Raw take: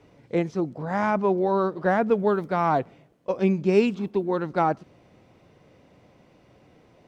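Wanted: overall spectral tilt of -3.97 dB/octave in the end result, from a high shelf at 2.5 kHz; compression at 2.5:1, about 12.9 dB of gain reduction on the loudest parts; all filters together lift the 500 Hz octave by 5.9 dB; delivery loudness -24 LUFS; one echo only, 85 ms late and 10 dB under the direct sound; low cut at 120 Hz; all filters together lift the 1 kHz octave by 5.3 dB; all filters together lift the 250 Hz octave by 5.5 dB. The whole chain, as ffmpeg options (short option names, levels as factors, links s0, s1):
-af "highpass=120,equalizer=f=250:t=o:g=7,equalizer=f=500:t=o:g=4,equalizer=f=1000:t=o:g=4,highshelf=f=2500:g=6.5,acompressor=threshold=0.0355:ratio=2.5,aecho=1:1:85:0.316,volume=1.78"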